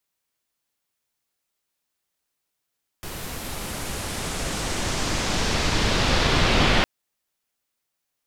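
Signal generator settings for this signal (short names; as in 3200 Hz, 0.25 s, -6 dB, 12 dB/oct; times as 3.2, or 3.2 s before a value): swept filtered noise pink, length 3.81 s lowpass, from 15000 Hz, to 3400 Hz, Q 1.2, exponential, gain ramp +18 dB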